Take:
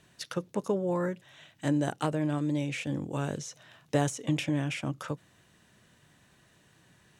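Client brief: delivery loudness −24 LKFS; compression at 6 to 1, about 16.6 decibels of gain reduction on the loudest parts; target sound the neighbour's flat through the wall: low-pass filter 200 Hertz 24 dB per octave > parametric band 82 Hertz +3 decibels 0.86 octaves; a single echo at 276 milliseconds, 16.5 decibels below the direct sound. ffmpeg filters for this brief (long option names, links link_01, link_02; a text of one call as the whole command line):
ffmpeg -i in.wav -af "acompressor=threshold=-41dB:ratio=6,lowpass=frequency=200:width=0.5412,lowpass=frequency=200:width=1.3066,equalizer=frequency=82:width_type=o:width=0.86:gain=3,aecho=1:1:276:0.15,volume=26.5dB" out.wav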